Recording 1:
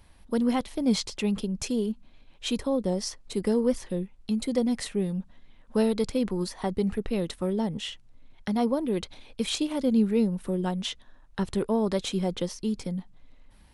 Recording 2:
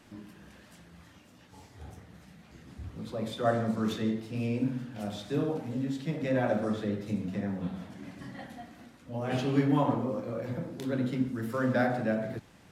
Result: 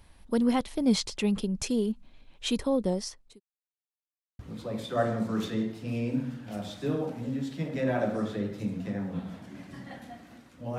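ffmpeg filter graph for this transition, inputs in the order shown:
-filter_complex "[0:a]apad=whole_dur=10.78,atrim=end=10.78,asplit=2[a][b];[a]atrim=end=3.4,asetpts=PTS-STARTPTS,afade=t=out:st=2.85:d=0.55[c];[b]atrim=start=3.4:end=4.39,asetpts=PTS-STARTPTS,volume=0[d];[1:a]atrim=start=2.87:end=9.26,asetpts=PTS-STARTPTS,afade=t=in:d=0.004:c=hsin[e];[c][d][e]concat=n=3:v=0:a=1"

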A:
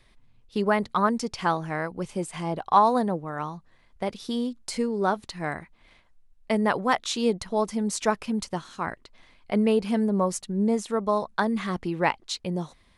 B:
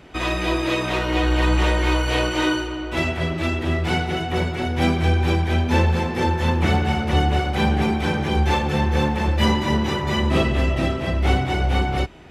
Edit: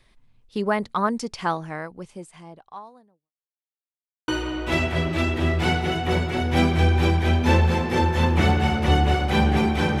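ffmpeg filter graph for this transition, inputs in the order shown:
-filter_complex "[0:a]apad=whole_dur=10,atrim=end=10,asplit=2[a][b];[a]atrim=end=3.33,asetpts=PTS-STARTPTS,afade=t=out:st=1.5:d=1.83:c=qua[c];[b]atrim=start=3.33:end=4.28,asetpts=PTS-STARTPTS,volume=0[d];[1:a]atrim=start=2.53:end=8.25,asetpts=PTS-STARTPTS,afade=t=in:d=0.004:c=hsin[e];[c][d][e]concat=n=3:v=0:a=1"

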